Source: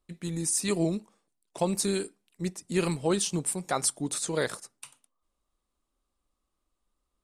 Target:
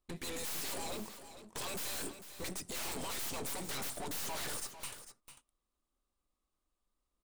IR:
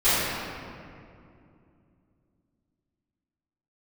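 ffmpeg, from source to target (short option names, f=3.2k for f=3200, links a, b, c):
-af "agate=range=-16dB:threshold=-54dB:ratio=16:detection=peak,afftfilt=real='re*lt(hypot(re,im),0.0794)':imag='im*lt(hypot(re,im),0.0794)':win_size=1024:overlap=0.75,aeval=exprs='(mod(50.1*val(0)+1,2)-1)/50.1':c=same,acontrast=53,aeval=exprs='(tanh(251*val(0)+0.7)-tanh(0.7))/251':c=same,aecho=1:1:448:0.251,volume=8.5dB"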